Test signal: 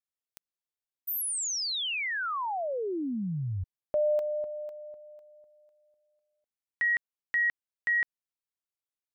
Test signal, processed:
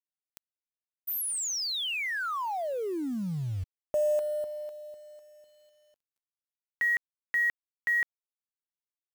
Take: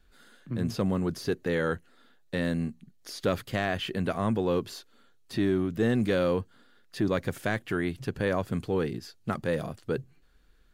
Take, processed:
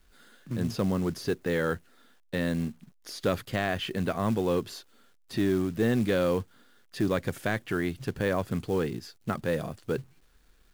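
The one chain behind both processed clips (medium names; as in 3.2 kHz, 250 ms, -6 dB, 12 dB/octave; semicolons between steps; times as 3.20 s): companded quantiser 6-bit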